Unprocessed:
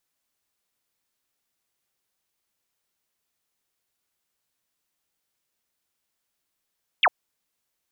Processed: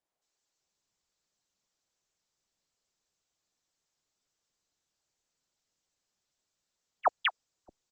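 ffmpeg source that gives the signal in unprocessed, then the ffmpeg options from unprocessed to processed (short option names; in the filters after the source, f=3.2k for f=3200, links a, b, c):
-f lavfi -i "aevalsrc='0.2*clip(t/0.002,0,1)*clip((0.05-t)/0.002,0,1)*sin(2*PI*3600*0.05/log(590/3600)*(exp(log(590/3600)*t/0.05)-1))':d=0.05:s=44100"
-filter_complex "[0:a]equalizer=f=2.4k:w=1.2:g=-8,acrossover=split=250|1300[a][b][c];[c]adelay=220[d];[a]adelay=610[e];[e][b][d]amix=inputs=3:normalize=0" -ar 48000 -c:a libopus -b:a 10k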